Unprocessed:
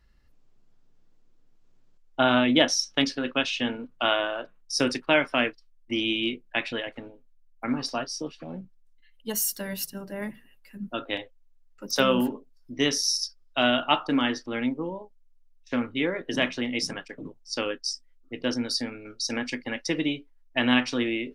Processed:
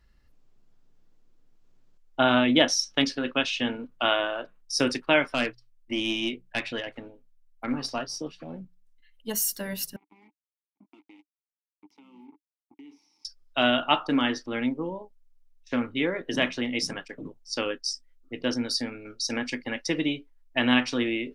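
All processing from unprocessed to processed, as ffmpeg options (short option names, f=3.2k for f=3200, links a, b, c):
-filter_complex "[0:a]asettb=1/sr,asplit=3[a][b][c];[a]atrim=end=5.314[d];[b]atrim=start=5.31:end=9.31,asetpts=PTS-STARTPTS,afade=t=in:d=0.004:c=qsin,afade=t=out:st=3.996:d=0.004:c=qsin,bandreject=f=60:t=h:w=6,bandreject=f=120:t=h:w=6,bandreject=f=180:t=h:w=6,aeval=exprs='(tanh(6.31*val(0)+0.35)-tanh(0.35))/6.31':c=same[e];[c]atrim=start=9.306[f];[d][e]acrossfade=d=0.004:c1=hsin:c2=qsin[g];[g][f]acrossfade=d=0.004:c1=qsin:c2=hsin,asettb=1/sr,asplit=3[h][i][j];[h]atrim=end=9.964[k];[i]atrim=start=9.96:end=13.25,asetpts=PTS-STARTPTS,afade=t=in:d=0.004:c=qsin,afade=t=out:st=3.286:d=0.004:c=qsin,acrusher=bits=4:mix=0:aa=0.5,acompressor=threshold=-36dB:ratio=12:attack=3.2:release=140:knee=1:detection=peak,asplit=3[l][m][n];[l]bandpass=f=300:t=q:w=8,volume=0dB[o];[m]bandpass=f=870:t=q:w=8,volume=-6dB[p];[n]bandpass=f=2.24k:t=q:w=8,volume=-9dB[q];[o][p][q]amix=inputs=3:normalize=0[r];[j]atrim=start=13.246[s];[k][r]acrossfade=d=0.004:c1=hsin:c2=qsin[t];[t][s]acrossfade=d=0.004:c1=qsin:c2=hsin"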